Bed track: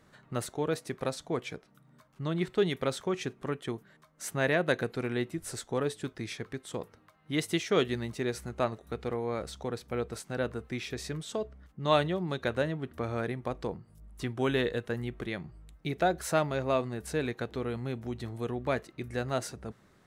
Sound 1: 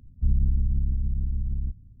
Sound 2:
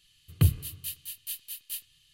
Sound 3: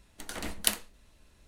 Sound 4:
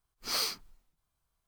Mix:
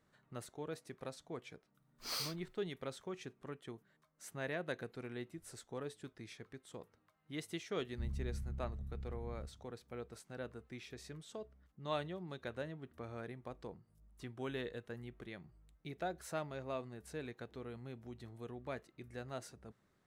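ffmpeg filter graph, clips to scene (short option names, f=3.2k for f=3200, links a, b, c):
-filter_complex "[0:a]volume=-13.5dB[a];[1:a]highpass=62[b];[4:a]atrim=end=1.47,asetpts=PTS-STARTPTS,volume=-9dB,afade=t=in:d=0.004:c=hsin,afade=t=out:st=1.466:d=0.004:c=hsin,adelay=1780[c];[b]atrim=end=2,asetpts=PTS-STARTPTS,volume=-14.5dB,afade=t=in:d=0.004:c=hsin,afade=t=out:st=1.996:d=0.004:c=hsin,adelay=7760[d];[a][c][d]amix=inputs=3:normalize=0"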